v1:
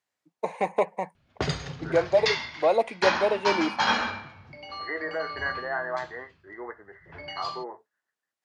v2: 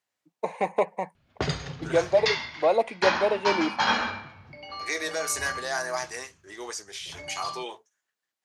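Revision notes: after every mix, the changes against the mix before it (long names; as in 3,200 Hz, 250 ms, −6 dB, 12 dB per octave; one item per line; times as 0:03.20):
second voice: remove linear-phase brick-wall low-pass 2,100 Hz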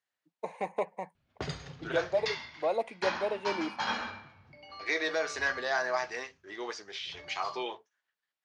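first voice −8.0 dB
second voice: add low-pass filter 4,500 Hz 24 dB per octave
background −9.0 dB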